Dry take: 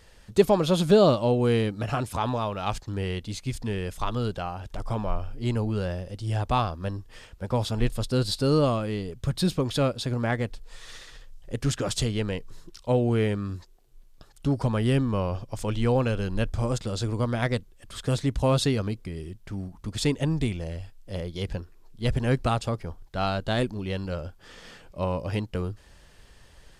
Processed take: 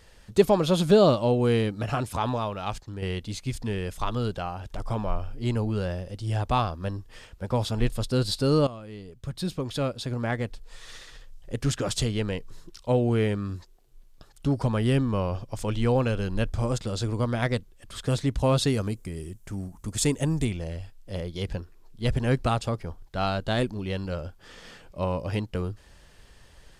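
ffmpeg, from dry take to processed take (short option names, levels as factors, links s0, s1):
-filter_complex "[0:a]asettb=1/sr,asplit=3[s0][s1][s2];[s0]atrim=end=18.674[s3];[s1]atrim=start=18.67:end=20.45,asetpts=PTS-STARTPTS,afade=t=in:d=0.004:c=qsin,afade=t=out:st=1.776:d=0.004:c=qsin,highshelf=f=5700:t=q:w=1.5:g=7.5[s4];[s2]atrim=start=20.446[s5];[s3][s4]acrossfade=d=0.004:c1=hsin:c2=qsin[s6];[s6][s5]acrossfade=d=0.004:c1=qsin:c2=hsin,asplit=3[s7][s8][s9];[s7]atrim=end=3.02,asetpts=PTS-STARTPTS,afade=t=out:st=2.32:d=0.7:silence=0.473151[s10];[s8]atrim=start=3.02:end=8.67,asetpts=PTS-STARTPTS,afade=t=in:d=0.004:c=hsin:silence=0.473151,afade=t=out:st=5.646:d=0.004:c=hsin:silence=0.16788[s11];[s9]atrim=start=8.67,asetpts=PTS-STARTPTS,afade=t=in:d=2.91:c=qsin:silence=0.16788[s12];[s10][s11][s12]concat=n=3:v=0:a=1"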